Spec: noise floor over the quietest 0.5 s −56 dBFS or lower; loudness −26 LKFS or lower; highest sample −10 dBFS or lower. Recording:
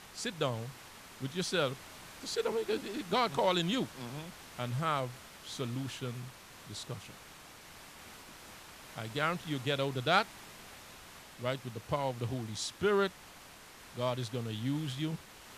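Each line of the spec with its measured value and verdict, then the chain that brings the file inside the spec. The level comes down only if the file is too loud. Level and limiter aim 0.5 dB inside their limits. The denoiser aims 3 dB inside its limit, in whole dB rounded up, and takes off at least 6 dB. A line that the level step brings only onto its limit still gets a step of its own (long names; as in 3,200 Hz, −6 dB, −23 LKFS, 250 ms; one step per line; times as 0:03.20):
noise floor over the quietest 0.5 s −53 dBFS: out of spec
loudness −35.0 LKFS: in spec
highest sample −12.0 dBFS: in spec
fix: broadband denoise 6 dB, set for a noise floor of −53 dBFS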